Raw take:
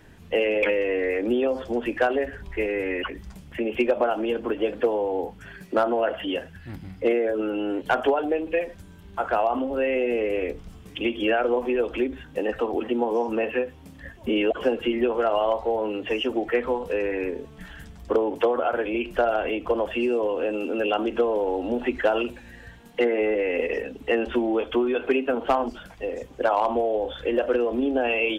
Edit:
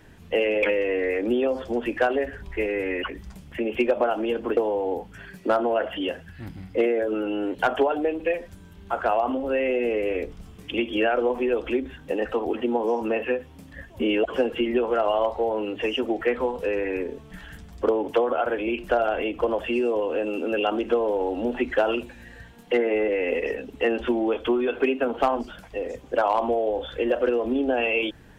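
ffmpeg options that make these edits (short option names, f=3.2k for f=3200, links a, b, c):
-filter_complex "[0:a]asplit=2[a][b];[a]atrim=end=4.572[c];[b]atrim=start=4.838[d];[c][d]acrossfade=d=0.004:c1=hsin:c2=hsin"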